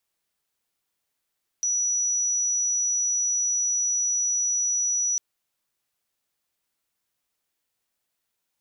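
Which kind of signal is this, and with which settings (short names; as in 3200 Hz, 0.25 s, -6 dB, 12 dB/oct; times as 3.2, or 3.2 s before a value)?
tone sine 5880 Hz -21.5 dBFS 3.55 s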